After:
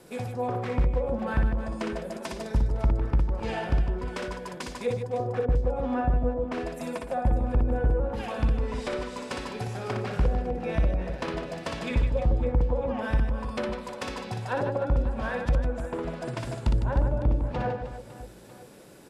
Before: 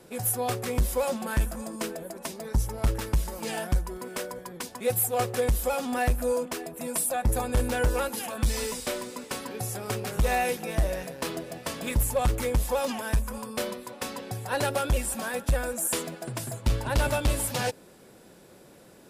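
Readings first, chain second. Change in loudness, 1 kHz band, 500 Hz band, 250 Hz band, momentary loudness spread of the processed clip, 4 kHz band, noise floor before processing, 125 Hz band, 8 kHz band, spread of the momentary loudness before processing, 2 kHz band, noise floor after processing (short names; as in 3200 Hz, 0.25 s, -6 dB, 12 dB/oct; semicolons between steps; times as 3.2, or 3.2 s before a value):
0.0 dB, -1.5 dB, -0.5 dB, +2.0 dB, 9 LU, -6.5 dB, -53 dBFS, +2.5 dB, -18.0 dB, 9 LU, -3.0 dB, -46 dBFS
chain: treble ducked by the level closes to 430 Hz, closed at -22 dBFS; reverse bouncing-ball echo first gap 60 ms, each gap 1.6×, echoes 5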